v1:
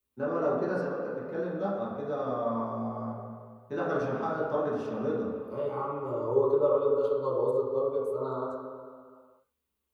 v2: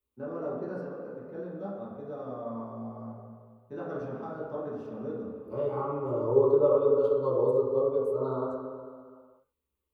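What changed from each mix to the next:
first voice -8.5 dB; master: add tilt shelf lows +4.5 dB, about 850 Hz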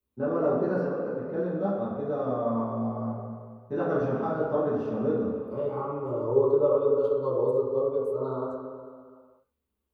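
first voice: send +9.5 dB

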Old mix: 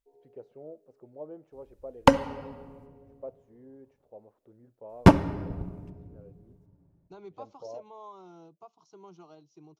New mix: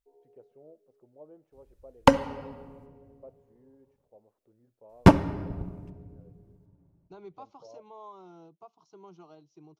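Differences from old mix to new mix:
first voice -8.5 dB; second voice: add distance through air 59 m

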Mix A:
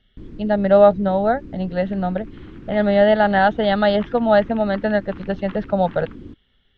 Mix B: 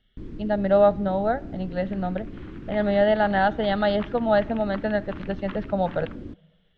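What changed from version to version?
speech -7.5 dB; reverb: on, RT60 1.1 s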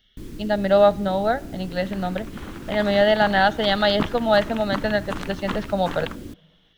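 second sound: remove band-pass filter 2.6 kHz, Q 1; master: remove tape spacing loss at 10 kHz 33 dB

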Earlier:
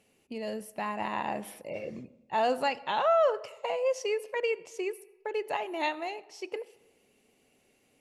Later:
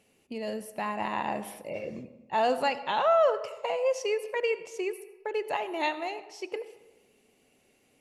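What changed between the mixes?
first voice: send +8.0 dB; second voice: send on

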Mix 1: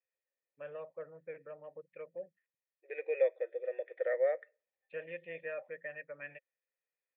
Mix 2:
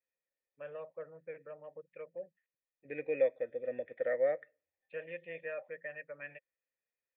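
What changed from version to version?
second voice: remove brick-wall FIR high-pass 330 Hz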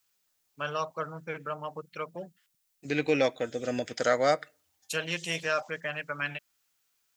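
master: remove cascade formant filter e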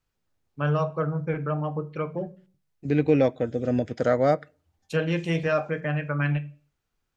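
first voice: send on; master: add tilt EQ -4.5 dB/octave

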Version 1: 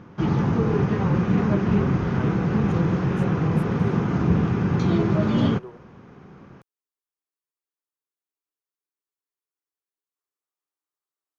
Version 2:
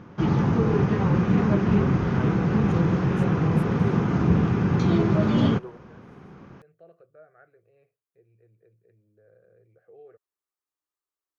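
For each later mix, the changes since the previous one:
first voice: unmuted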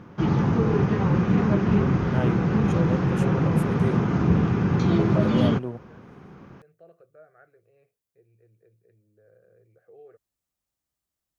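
second voice: remove rippled Chebyshev high-pass 290 Hz, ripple 9 dB

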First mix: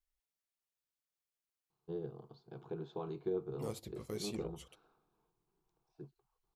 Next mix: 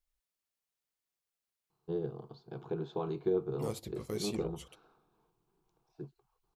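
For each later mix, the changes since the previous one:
first voice +6.0 dB; second voice +4.0 dB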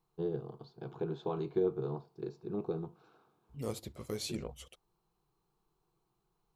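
first voice: entry -1.70 s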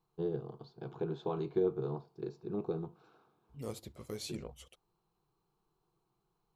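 second voice -3.5 dB

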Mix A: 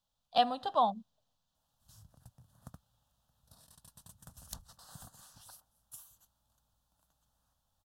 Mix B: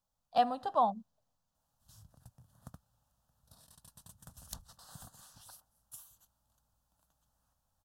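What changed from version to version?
speech: add peaking EQ 3.5 kHz -10.5 dB 0.81 oct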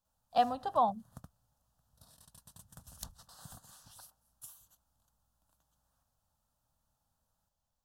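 background: entry -1.50 s

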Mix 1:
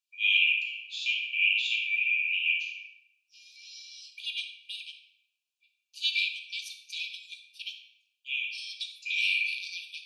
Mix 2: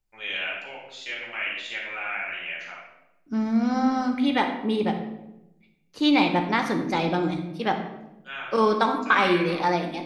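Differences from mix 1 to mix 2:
first voice: add differentiator; master: remove brick-wall FIR high-pass 2.3 kHz

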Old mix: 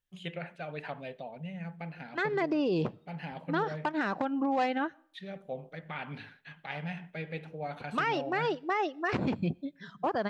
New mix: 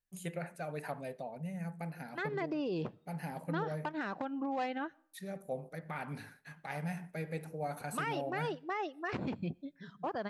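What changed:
first voice: remove resonant low-pass 3.2 kHz, resonance Q 4.5; second voice -7.0 dB

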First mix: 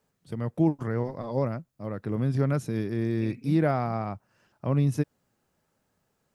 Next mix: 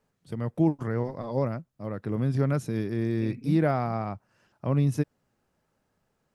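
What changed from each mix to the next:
second voice: add tilt EQ -2 dB/octave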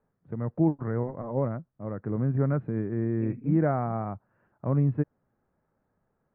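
first voice: add distance through air 290 m; master: add low-pass 1.8 kHz 24 dB/octave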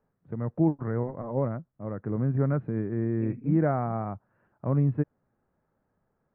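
no change

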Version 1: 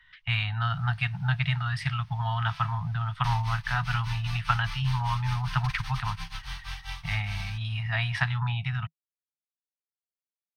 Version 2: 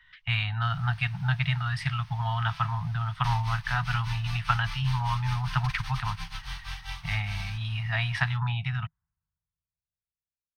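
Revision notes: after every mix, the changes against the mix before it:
first sound +6.0 dB; reverb: on, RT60 2.4 s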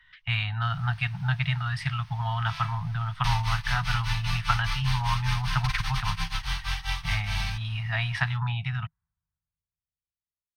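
second sound +7.5 dB

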